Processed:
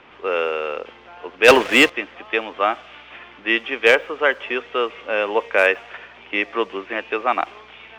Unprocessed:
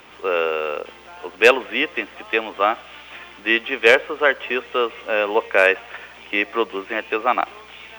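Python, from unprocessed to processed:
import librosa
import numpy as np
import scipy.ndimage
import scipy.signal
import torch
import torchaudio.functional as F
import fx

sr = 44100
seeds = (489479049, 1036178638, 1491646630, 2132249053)

y = fx.env_lowpass(x, sr, base_hz=3000.0, full_db=-12.0)
y = fx.leveller(y, sr, passes=3, at=(1.48, 1.9))
y = y * librosa.db_to_amplitude(-1.0)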